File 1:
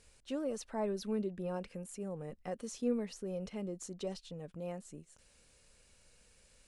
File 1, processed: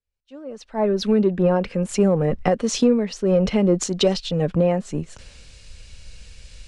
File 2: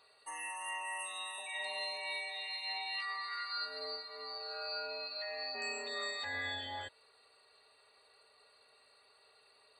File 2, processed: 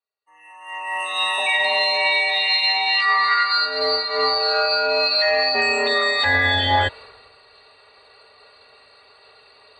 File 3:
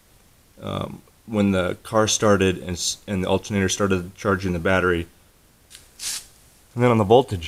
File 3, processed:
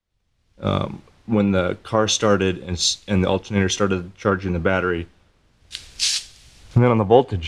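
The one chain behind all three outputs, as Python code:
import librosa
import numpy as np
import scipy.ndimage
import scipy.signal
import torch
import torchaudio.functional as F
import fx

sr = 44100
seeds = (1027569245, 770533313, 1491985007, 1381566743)

p1 = fx.recorder_agc(x, sr, target_db=-7.5, rise_db_per_s=21.0, max_gain_db=30)
p2 = 10.0 ** (-17.5 / 20.0) * np.tanh(p1 / 10.0 ** (-17.5 / 20.0))
p3 = p1 + F.gain(torch.from_numpy(p2), -10.5).numpy()
p4 = scipy.signal.sosfilt(scipy.signal.butter(2, 4600.0, 'lowpass', fs=sr, output='sos'), p3)
p5 = fx.band_widen(p4, sr, depth_pct=70)
y = F.gain(torch.from_numpy(p5), -3.0).numpy()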